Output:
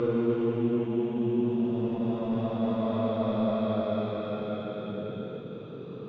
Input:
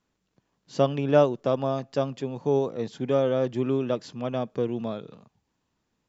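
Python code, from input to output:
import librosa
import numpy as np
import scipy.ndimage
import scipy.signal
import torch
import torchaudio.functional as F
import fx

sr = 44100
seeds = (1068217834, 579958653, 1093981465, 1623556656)

y = 10.0 ** (-22.5 / 20.0) * np.tanh(x / 10.0 ** (-22.5 / 20.0))
y = fx.paulstretch(y, sr, seeds[0], factor=14.0, window_s=0.25, from_s=4.66)
y = fx.air_absorb(y, sr, metres=150.0)
y = fx.attack_slew(y, sr, db_per_s=120.0)
y = y * librosa.db_to_amplitude(4.5)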